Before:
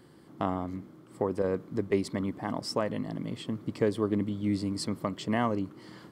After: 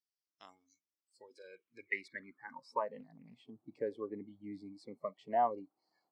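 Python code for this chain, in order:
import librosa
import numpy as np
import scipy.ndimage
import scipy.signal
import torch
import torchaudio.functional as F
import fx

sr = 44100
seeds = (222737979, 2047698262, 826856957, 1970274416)

y = fx.noise_reduce_blind(x, sr, reduce_db=26)
y = fx.filter_sweep_bandpass(y, sr, from_hz=5700.0, to_hz=760.0, start_s=0.9, end_s=2.93, q=7.0)
y = fx.doppler_dist(y, sr, depth_ms=0.27, at=(3.0, 3.41))
y = y * librosa.db_to_amplitude(8.0)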